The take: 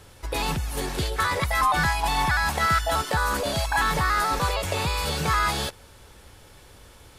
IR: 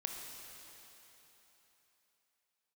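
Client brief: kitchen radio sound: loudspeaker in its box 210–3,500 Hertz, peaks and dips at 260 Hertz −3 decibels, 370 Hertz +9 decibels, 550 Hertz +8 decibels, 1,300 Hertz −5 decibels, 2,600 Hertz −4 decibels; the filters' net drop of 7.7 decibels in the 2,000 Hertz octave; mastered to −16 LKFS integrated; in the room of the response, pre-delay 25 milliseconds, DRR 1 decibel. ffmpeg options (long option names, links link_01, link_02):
-filter_complex "[0:a]equalizer=frequency=2000:width_type=o:gain=-8,asplit=2[link_01][link_02];[1:a]atrim=start_sample=2205,adelay=25[link_03];[link_02][link_03]afir=irnorm=-1:irlink=0,volume=-1dB[link_04];[link_01][link_04]amix=inputs=2:normalize=0,highpass=210,equalizer=frequency=260:width_type=q:width=4:gain=-3,equalizer=frequency=370:width_type=q:width=4:gain=9,equalizer=frequency=550:width_type=q:width=4:gain=8,equalizer=frequency=1300:width_type=q:width=4:gain=-5,equalizer=frequency=2600:width_type=q:width=4:gain=-4,lowpass=frequency=3500:width=0.5412,lowpass=frequency=3500:width=1.3066,volume=8.5dB"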